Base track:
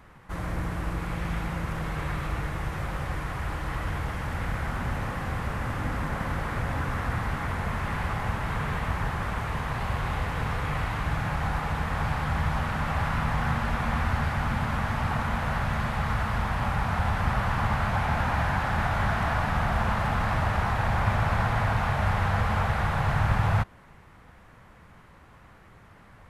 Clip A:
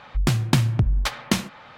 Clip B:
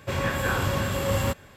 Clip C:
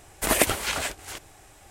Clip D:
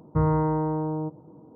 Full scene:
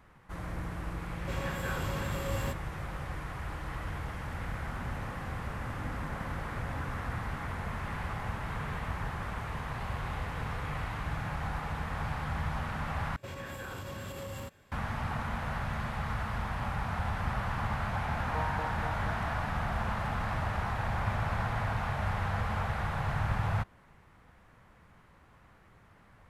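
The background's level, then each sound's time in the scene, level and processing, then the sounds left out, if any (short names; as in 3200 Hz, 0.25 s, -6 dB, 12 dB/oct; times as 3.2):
base track -7 dB
1.2 add B -10.5 dB
13.16 replace with B -12 dB + limiter -20 dBFS
18.11 add D -12 dB + LFO high-pass saw up 4.2 Hz 570–1700 Hz
not used: A, C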